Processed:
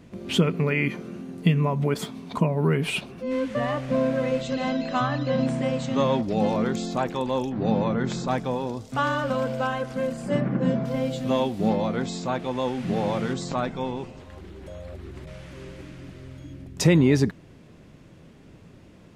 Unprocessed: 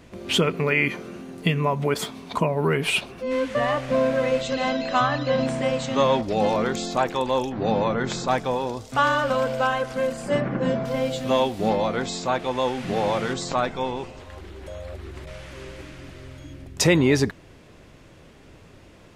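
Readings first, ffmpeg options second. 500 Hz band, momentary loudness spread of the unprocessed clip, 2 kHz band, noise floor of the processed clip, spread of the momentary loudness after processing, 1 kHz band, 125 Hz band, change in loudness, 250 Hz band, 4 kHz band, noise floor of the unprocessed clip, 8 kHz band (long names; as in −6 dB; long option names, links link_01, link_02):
−3.0 dB, 18 LU, −5.5 dB, −50 dBFS, 18 LU, −5.0 dB, +3.0 dB, −1.5 dB, +2.0 dB, −5.5 dB, −49 dBFS, −5.5 dB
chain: -af "equalizer=frequency=180:width=0.77:gain=9.5,volume=-5.5dB"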